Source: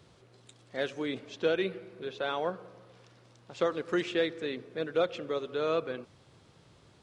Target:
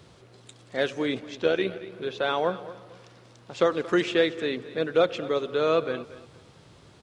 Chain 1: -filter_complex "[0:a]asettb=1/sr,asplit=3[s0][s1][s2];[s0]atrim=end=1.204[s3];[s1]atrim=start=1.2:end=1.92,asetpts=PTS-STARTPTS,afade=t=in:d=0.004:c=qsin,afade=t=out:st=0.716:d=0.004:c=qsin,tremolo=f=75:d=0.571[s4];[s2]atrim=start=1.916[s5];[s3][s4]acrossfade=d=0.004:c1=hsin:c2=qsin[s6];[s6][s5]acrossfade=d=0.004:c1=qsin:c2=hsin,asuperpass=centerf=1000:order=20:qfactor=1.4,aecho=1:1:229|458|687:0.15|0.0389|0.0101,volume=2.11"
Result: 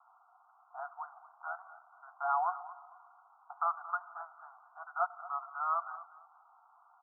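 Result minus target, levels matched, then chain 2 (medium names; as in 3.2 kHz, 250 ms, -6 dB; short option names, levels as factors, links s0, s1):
1 kHz band +10.0 dB
-filter_complex "[0:a]asettb=1/sr,asplit=3[s0][s1][s2];[s0]atrim=end=1.204[s3];[s1]atrim=start=1.2:end=1.92,asetpts=PTS-STARTPTS,afade=t=in:d=0.004:c=qsin,afade=t=out:st=0.716:d=0.004:c=qsin,tremolo=f=75:d=0.571[s4];[s2]atrim=start=1.916[s5];[s3][s4]acrossfade=d=0.004:c1=hsin:c2=qsin[s6];[s6][s5]acrossfade=d=0.004:c1=qsin:c2=hsin,aecho=1:1:229|458|687:0.15|0.0389|0.0101,volume=2.11"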